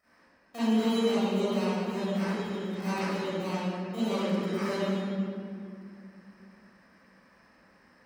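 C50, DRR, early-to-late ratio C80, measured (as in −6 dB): −8.0 dB, −15.5 dB, −4.0 dB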